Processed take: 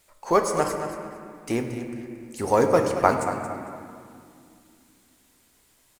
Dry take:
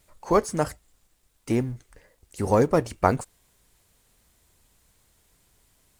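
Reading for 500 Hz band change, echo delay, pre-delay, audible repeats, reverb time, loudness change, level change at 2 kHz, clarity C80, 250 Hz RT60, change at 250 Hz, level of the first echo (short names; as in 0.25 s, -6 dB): +2.0 dB, 0.227 s, 7 ms, 2, 2.3 s, 0.0 dB, +4.0 dB, 5.0 dB, 3.6 s, -1.0 dB, -11.0 dB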